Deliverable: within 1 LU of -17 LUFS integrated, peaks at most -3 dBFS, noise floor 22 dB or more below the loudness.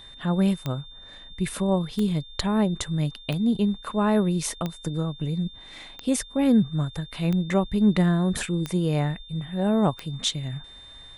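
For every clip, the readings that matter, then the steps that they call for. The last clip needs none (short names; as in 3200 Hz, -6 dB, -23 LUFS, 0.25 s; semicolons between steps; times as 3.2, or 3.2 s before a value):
clicks 8; steady tone 3600 Hz; tone level -44 dBFS; loudness -25.5 LUFS; peak -8.0 dBFS; loudness target -17.0 LUFS
-> de-click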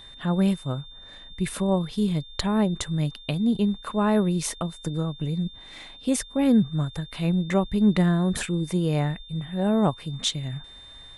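clicks 0; steady tone 3600 Hz; tone level -44 dBFS
-> notch 3600 Hz, Q 30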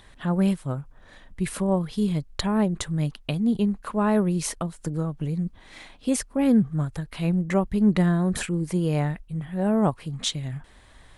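steady tone none; loudness -25.5 LUFS; peak -8.5 dBFS; loudness target -17.0 LUFS
-> gain +8.5 dB; limiter -3 dBFS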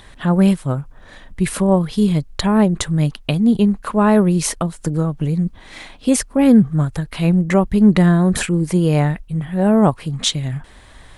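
loudness -17.0 LUFS; peak -3.0 dBFS; noise floor -44 dBFS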